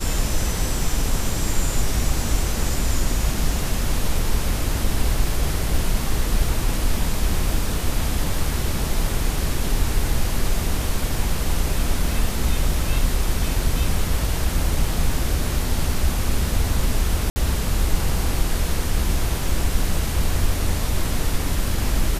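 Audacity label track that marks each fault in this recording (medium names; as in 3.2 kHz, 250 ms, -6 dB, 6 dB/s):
17.300000	17.360000	dropout 60 ms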